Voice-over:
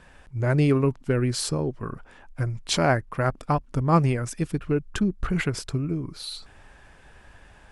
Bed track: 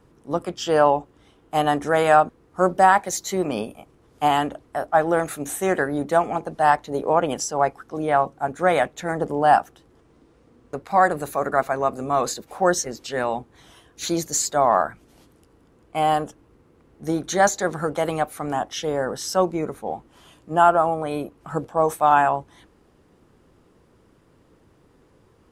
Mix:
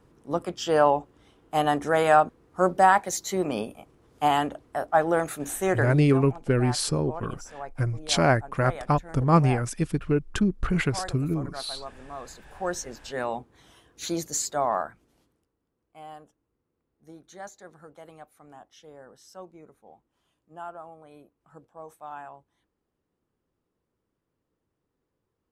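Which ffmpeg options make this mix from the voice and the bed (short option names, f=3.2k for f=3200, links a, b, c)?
-filter_complex "[0:a]adelay=5400,volume=0.5dB[a];[1:a]volume=9.5dB,afade=t=out:st=5.8:d=0.22:silence=0.177828,afade=t=in:st=12.29:d=0.96:silence=0.237137,afade=t=out:st=14.4:d=1.12:silence=0.125893[b];[a][b]amix=inputs=2:normalize=0"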